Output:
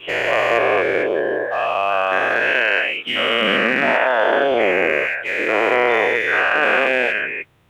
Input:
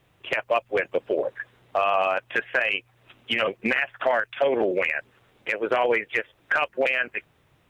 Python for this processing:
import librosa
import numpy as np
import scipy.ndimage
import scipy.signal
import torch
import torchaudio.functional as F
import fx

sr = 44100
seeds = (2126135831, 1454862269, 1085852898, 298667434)

y = fx.spec_dilate(x, sr, span_ms=480)
y = fx.highpass(y, sr, hz=160.0, slope=12, at=(2.52, 4.52))
y = F.gain(torch.from_numpy(y), -1.5).numpy()